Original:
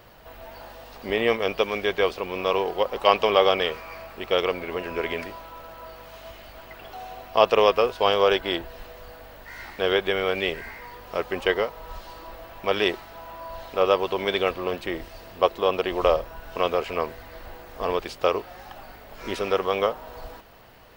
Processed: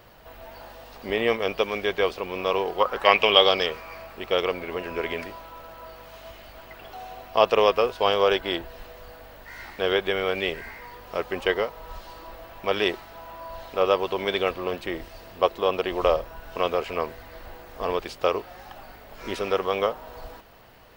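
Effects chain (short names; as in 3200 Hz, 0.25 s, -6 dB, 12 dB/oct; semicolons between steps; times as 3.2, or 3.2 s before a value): 2.79–3.65 bell 1100 Hz -> 5500 Hz +14.5 dB 0.47 oct; gain -1 dB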